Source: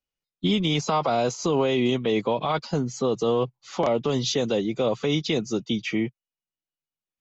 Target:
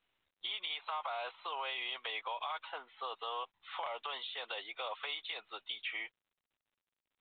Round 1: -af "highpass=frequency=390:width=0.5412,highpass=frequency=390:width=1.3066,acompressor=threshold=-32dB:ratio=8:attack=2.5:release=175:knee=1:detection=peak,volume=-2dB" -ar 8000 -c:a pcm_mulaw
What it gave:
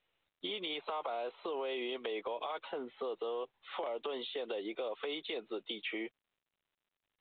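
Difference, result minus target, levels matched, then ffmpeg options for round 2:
500 Hz band +9.0 dB
-af "highpass=frequency=850:width=0.5412,highpass=frequency=850:width=1.3066,acompressor=threshold=-32dB:ratio=8:attack=2.5:release=175:knee=1:detection=peak,volume=-2dB" -ar 8000 -c:a pcm_mulaw

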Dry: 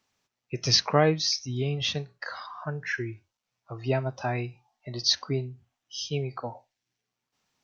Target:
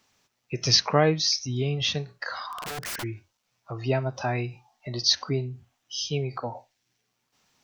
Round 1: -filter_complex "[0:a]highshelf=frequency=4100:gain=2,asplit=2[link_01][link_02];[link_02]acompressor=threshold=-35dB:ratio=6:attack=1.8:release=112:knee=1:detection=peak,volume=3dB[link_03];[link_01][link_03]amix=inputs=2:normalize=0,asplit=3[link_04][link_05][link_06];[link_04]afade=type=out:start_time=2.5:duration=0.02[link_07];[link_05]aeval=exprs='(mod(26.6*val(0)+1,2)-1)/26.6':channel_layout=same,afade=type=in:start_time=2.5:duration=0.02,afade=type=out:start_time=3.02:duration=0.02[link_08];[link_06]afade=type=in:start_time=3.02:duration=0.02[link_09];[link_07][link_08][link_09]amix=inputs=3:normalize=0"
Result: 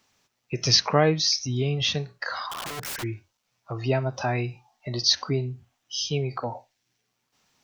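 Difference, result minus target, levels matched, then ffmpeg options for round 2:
downward compressor: peak gain reduction −6 dB
-filter_complex "[0:a]highshelf=frequency=4100:gain=2,asplit=2[link_01][link_02];[link_02]acompressor=threshold=-42.5dB:ratio=6:attack=1.8:release=112:knee=1:detection=peak,volume=3dB[link_03];[link_01][link_03]amix=inputs=2:normalize=0,asplit=3[link_04][link_05][link_06];[link_04]afade=type=out:start_time=2.5:duration=0.02[link_07];[link_05]aeval=exprs='(mod(26.6*val(0)+1,2)-1)/26.6':channel_layout=same,afade=type=in:start_time=2.5:duration=0.02,afade=type=out:start_time=3.02:duration=0.02[link_08];[link_06]afade=type=in:start_time=3.02:duration=0.02[link_09];[link_07][link_08][link_09]amix=inputs=3:normalize=0"

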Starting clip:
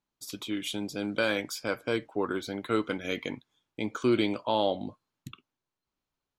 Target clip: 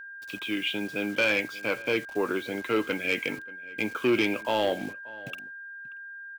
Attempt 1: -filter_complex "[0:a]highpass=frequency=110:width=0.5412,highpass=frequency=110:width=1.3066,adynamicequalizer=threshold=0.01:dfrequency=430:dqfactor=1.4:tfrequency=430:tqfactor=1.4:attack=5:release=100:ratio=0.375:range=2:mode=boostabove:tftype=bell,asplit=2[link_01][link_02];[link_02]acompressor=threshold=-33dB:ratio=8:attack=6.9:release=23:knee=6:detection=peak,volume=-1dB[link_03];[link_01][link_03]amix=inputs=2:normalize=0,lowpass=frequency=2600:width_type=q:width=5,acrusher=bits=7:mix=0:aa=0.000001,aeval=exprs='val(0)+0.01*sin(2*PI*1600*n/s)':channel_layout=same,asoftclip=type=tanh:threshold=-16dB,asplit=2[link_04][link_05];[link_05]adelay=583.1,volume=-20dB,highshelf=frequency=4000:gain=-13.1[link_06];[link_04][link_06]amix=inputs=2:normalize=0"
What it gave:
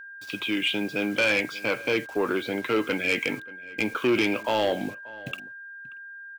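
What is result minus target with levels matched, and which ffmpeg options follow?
downward compressor: peak gain reduction +13.5 dB
-filter_complex "[0:a]highpass=frequency=110:width=0.5412,highpass=frequency=110:width=1.3066,adynamicequalizer=threshold=0.01:dfrequency=430:dqfactor=1.4:tfrequency=430:tqfactor=1.4:attack=5:release=100:ratio=0.375:range=2:mode=boostabove:tftype=bell,lowpass=frequency=2600:width_type=q:width=5,acrusher=bits=7:mix=0:aa=0.000001,aeval=exprs='val(0)+0.01*sin(2*PI*1600*n/s)':channel_layout=same,asoftclip=type=tanh:threshold=-16dB,asplit=2[link_01][link_02];[link_02]adelay=583.1,volume=-20dB,highshelf=frequency=4000:gain=-13.1[link_03];[link_01][link_03]amix=inputs=2:normalize=0"

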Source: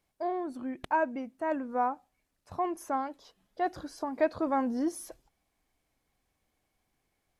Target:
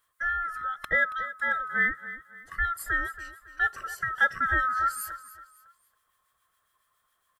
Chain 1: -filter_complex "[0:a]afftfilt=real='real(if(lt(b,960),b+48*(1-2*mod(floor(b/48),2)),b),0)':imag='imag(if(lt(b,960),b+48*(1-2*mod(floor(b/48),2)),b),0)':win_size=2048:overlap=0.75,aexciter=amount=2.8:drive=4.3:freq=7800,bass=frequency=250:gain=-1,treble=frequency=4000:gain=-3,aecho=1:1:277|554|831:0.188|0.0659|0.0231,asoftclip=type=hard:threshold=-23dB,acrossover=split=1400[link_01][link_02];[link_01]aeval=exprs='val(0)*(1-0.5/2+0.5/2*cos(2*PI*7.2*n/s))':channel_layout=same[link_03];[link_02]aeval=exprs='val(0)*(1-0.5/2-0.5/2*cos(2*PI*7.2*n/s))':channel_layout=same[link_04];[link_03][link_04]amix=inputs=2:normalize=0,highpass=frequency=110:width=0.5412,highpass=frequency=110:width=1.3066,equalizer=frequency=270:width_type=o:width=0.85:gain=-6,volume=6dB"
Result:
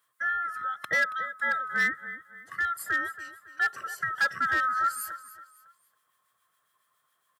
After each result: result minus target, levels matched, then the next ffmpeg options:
hard clipping: distortion +36 dB; 125 Hz band −7.5 dB
-filter_complex "[0:a]afftfilt=real='real(if(lt(b,960),b+48*(1-2*mod(floor(b/48),2)),b),0)':imag='imag(if(lt(b,960),b+48*(1-2*mod(floor(b/48),2)),b),0)':win_size=2048:overlap=0.75,aexciter=amount=2.8:drive=4.3:freq=7800,bass=frequency=250:gain=-1,treble=frequency=4000:gain=-3,aecho=1:1:277|554|831:0.188|0.0659|0.0231,asoftclip=type=hard:threshold=-15dB,acrossover=split=1400[link_01][link_02];[link_01]aeval=exprs='val(0)*(1-0.5/2+0.5/2*cos(2*PI*7.2*n/s))':channel_layout=same[link_03];[link_02]aeval=exprs='val(0)*(1-0.5/2-0.5/2*cos(2*PI*7.2*n/s))':channel_layout=same[link_04];[link_03][link_04]amix=inputs=2:normalize=0,highpass=frequency=110:width=0.5412,highpass=frequency=110:width=1.3066,equalizer=frequency=270:width_type=o:width=0.85:gain=-6,volume=6dB"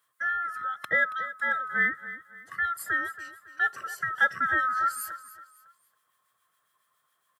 125 Hz band −7.5 dB
-filter_complex "[0:a]afftfilt=real='real(if(lt(b,960),b+48*(1-2*mod(floor(b/48),2)),b),0)':imag='imag(if(lt(b,960),b+48*(1-2*mod(floor(b/48),2)),b),0)':win_size=2048:overlap=0.75,aexciter=amount=2.8:drive=4.3:freq=7800,bass=frequency=250:gain=-1,treble=frequency=4000:gain=-3,aecho=1:1:277|554|831:0.188|0.0659|0.0231,asoftclip=type=hard:threshold=-15dB,acrossover=split=1400[link_01][link_02];[link_01]aeval=exprs='val(0)*(1-0.5/2+0.5/2*cos(2*PI*7.2*n/s))':channel_layout=same[link_03];[link_02]aeval=exprs='val(0)*(1-0.5/2-0.5/2*cos(2*PI*7.2*n/s))':channel_layout=same[link_04];[link_03][link_04]amix=inputs=2:normalize=0,equalizer=frequency=270:width_type=o:width=0.85:gain=-6,volume=6dB"

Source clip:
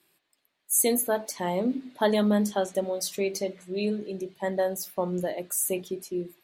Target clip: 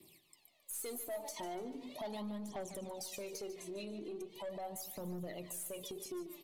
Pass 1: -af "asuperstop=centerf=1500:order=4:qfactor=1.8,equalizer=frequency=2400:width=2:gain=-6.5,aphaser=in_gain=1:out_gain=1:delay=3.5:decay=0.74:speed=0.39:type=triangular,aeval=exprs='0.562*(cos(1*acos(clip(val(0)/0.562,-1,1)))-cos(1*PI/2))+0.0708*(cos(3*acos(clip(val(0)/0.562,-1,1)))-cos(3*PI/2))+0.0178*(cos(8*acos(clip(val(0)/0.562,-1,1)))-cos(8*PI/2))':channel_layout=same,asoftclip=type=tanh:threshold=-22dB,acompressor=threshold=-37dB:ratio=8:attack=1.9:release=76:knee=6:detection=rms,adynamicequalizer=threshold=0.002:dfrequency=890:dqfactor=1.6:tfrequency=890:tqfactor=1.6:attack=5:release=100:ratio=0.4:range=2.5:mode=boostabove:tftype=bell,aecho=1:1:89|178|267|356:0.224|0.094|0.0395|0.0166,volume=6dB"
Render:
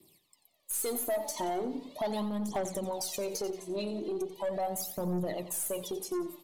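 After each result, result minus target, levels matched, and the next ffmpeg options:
downward compressor: peak gain reduction −9.5 dB; echo 58 ms early; 2,000 Hz band −3.0 dB
-af "asuperstop=centerf=1500:order=4:qfactor=1.8,equalizer=frequency=2400:width=2:gain=-6.5,aphaser=in_gain=1:out_gain=1:delay=3.5:decay=0.74:speed=0.39:type=triangular,aeval=exprs='0.562*(cos(1*acos(clip(val(0)/0.562,-1,1)))-cos(1*PI/2))+0.0708*(cos(3*acos(clip(val(0)/0.562,-1,1)))-cos(3*PI/2))+0.0178*(cos(8*acos(clip(val(0)/0.562,-1,1)))-cos(8*PI/2))':channel_layout=same,asoftclip=type=tanh:threshold=-22dB,acompressor=threshold=-48dB:ratio=8:attack=1.9:release=76:knee=6:detection=rms,adynamicequalizer=threshold=0.002:dfrequency=890:dqfactor=1.6:tfrequency=890:tqfactor=1.6:attack=5:release=100:ratio=0.4:range=2.5:mode=boostabove:tftype=bell,aecho=1:1:89|178|267|356:0.224|0.094|0.0395|0.0166,volume=6dB"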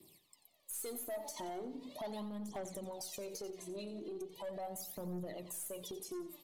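echo 58 ms early; 2,000 Hz band −2.5 dB
-af "asuperstop=centerf=1500:order=4:qfactor=1.8,equalizer=frequency=2400:width=2:gain=-6.5,aphaser=in_gain=1:out_gain=1:delay=3.5:decay=0.74:speed=0.39:type=triangular,aeval=exprs='0.562*(cos(1*acos(clip(val(0)/0.562,-1,1)))-cos(1*PI/2))+0.0708*(cos(3*acos(clip(val(0)/0.562,-1,1)))-cos(3*PI/2))+0.0178*(cos(8*acos(clip(val(0)/0.562,-1,1)))-cos(8*PI/2))':channel_layout=same,asoftclip=type=tanh:threshold=-22dB,acompressor=threshold=-48dB:ratio=8:attack=1.9:release=76:knee=6:detection=rms,adynamicequalizer=threshold=0.002:dfrequency=890:dqfactor=1.6:tfrequency=890:tqfactor=1.6:attack=5:release=100:ratio=0.4:range=2.5:mode=boostabove:tftype=bell,aecho=1:1:147|294|441|588:0.224|0.094|0.0395|0.0166,volume=6dB"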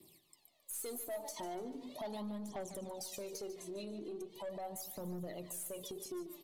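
2,000 Hz band −2.5 dB
-af "asuperstop=centerf=1500:order=4:qfactor=1.8,aphaser=in_gain=1:out_gain=1:delay=3.5:decay=0.74:speed=0.39:type=triangular,aeval=exprs='0.562*(cos(1*acos(clip(val(0)/0.562,-1,1)))-cos(1*PI/2))+0.0708*(cos(3*acos(clip(val(0)/0.562,-1,1)))-cos(3*PI/2))+0.0178*(cos(8*acos(clip(val(0)/0.562,-1,1)))-cos(8*PI/2))':channel_layout=same,asoftclip=type=tanh:threshold=-22dB,acompressor=threshold=-48dB:ratio=8:attack=1.9:release=76:knee=6:detection=rms,adynamicequalizer=threshold=0.002:dfrequency=890:dqfactor=1.6:tfrequency=890:tqfactor=1.6:attack=5:release=100:ratio=0.4:range=2.5:mode=boostabove:tftype=bell,aecho=1:1:147|294|441|588:0.224|0.094|0.0395|0.0166,volume=6dB"

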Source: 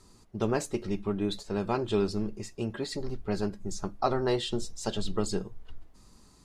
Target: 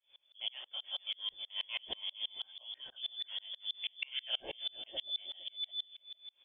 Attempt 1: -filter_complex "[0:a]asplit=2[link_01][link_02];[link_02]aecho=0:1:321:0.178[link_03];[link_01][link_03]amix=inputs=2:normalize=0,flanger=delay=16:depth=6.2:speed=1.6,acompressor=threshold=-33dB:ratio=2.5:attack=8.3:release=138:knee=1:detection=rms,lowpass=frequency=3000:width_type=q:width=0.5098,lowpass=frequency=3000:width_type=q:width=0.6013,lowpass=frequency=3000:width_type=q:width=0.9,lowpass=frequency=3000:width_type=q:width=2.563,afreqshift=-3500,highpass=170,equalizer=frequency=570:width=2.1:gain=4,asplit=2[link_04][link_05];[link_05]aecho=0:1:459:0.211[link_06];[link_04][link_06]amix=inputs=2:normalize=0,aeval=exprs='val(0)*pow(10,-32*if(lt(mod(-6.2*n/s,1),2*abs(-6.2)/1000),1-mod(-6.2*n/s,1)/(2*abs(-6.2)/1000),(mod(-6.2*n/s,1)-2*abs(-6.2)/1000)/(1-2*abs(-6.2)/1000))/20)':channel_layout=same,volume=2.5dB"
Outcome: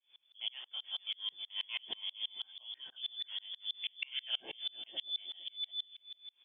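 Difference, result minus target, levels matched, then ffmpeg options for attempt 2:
500 Hz band −7.0 dB; 125 Hz band −6.5 dB
-filter_complex "[0:a]asplit=2[link_01][link_02];[link_02]aecho=0:1:321:0.178[link_03];[link_01][link_03]amix=inputs=2:normalize=0,flanger=delay=16:depth=6.2:speed=1.6,acompressor=threshold=-33dB:ratio=2.5:attack=8.3:release=138:knee=1:detection=rms,lowpass=frequency=3000:width_type=q:width=0.5098,lowpass=frequency=3000:width_type=q:width=0.6013,lowpass=frequency=3000:width_type=q:width=0.9,lowpass=frequency=3000:width_type=q:width=2.563,afreqshift=-3500,equalizer=frequency=570:width=2.1:gain=14,asplit=2[link_04][link_05];[link_05]aecho=0:1:459:0.211[link_06];[link_04][link_06]amix=inputs=2:normalize=0,aeval=exprs='val(0)*pow(10,-32*if(lt(mod(-6.2*n/s,1),2*abs(-6.2)/1000),1-mod(-6.2*n/s,1)/(2*abs(-6.2)/1000),(mod(-6.2*n/s,1)-2*abs(-6.2)/1000)/(1-2*abs(-6.2)/1000))/20)':channel_layout=same,volume=2.5dB"

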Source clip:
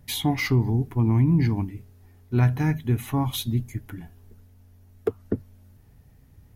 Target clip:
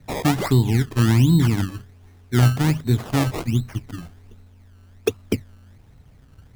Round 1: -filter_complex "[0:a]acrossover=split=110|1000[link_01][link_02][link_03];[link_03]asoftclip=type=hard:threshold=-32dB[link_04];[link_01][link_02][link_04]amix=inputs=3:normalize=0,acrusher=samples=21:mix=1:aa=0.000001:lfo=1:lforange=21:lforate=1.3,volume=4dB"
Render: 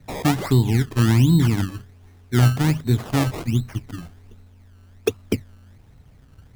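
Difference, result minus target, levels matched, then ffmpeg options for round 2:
hard clipping: distortion +7 dB
-filter_complex "[0:a]acrossover=split=110|1000[link_01][link_02][link_03];[link_03]asoftclip=type=hard:threshold=-26dB[link_04];[link_01][link_02][link_04]amix=inputs=3:normalize=0,acrusher=samples=21:mix=1:aa=0.000001:lfo=1:lforange=21:lforate=1.3,volume=4dB"

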